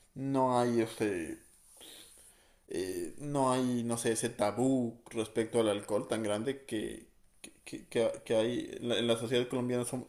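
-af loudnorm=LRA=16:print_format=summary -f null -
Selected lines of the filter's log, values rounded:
Input Integrated:    -33.0 LUFS
Input True Peak:     -16.7 dBTP
Input LRA:             3.1 LU
Input Threshold:     -43.9 LUFS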